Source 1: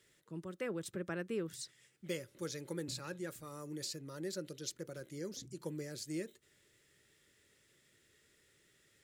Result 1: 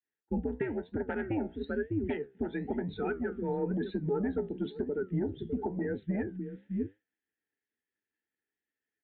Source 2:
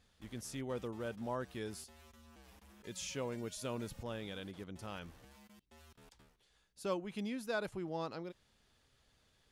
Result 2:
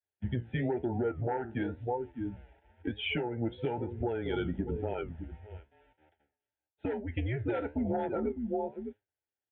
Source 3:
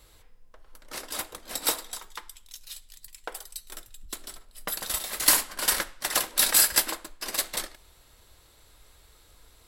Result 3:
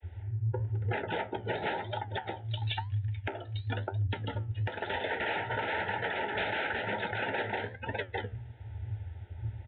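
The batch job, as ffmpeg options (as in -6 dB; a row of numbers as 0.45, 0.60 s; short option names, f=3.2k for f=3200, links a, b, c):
-af "aecho=1:1:604:0.224,adynamicequalizer=threshold=0.00141:dfrequency=280:dqfactor=2.2:tfrequency=280:tqfactor=2.2:attack=5:release=100:ratio=0.375:range=2:mode=boostabove:tftype=bell,agate=range=-33dB:threshold=-55dB:ratio=3:detection=peak,acontrast=77,afreqshift=-120,afftdn=nr=23:nf=-38,aresample=8000,aeval=exprs='0.501*sin(PI/2*7.08*val(0)/0.501)':c=same,aresample=44100,asuperstop=centerf=1100:order=8:qfactor=2.7,highpass=100,equalizer=f=140:t=q:w=4:g=-7,equalizer=f=200:t=q:w=4:g=-4,equalizer=f=420:t=q:w=4:g=6,equalizer=f=610:t=q:w=4:g=5,equalizer=f=890:t=q:w=4:g=9,equalizer=f=1.8k:t=q:w=4:g=4,lowpass=f=2.8k:w=0.5412,lowpass=f=2.8k:w=1.3066,acompressor=threshold=-23dB:ratio=10,flanger=delay=9.3:depth=8.4:regen=69:speed=1:shape=triangular,alimiter=limit=-22dB:level=0:latency=1:release=462"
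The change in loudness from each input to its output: +8.5, +7.5, -9.5 LU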